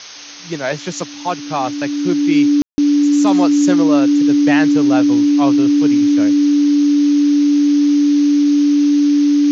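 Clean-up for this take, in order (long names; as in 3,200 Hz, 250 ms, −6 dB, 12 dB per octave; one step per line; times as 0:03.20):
notch filter 290 Hz, Q 30
ambience match 0:02.62–0:02.78
broadband denoise 30 dB, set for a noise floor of −29 dBFS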